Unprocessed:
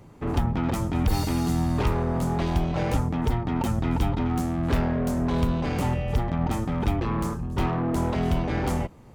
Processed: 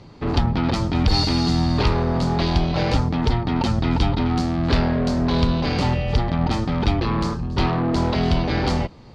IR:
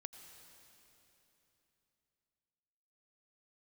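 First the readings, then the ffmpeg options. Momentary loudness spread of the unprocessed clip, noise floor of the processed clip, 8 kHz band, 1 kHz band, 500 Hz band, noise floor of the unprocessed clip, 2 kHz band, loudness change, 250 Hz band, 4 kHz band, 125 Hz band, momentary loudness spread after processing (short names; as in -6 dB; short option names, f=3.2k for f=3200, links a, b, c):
2 LU, -43 dBFS, +1.0 dB, +5.0 dB, +4.5 dB, -48 dBFS, +6.5 dB, +5.0 dB, +4.5 dB, +13.0 dB, +4.5 dB, 3 LU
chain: -af "lowpass=f=4.5k:t=q:w=4.3,volume=4.5dB"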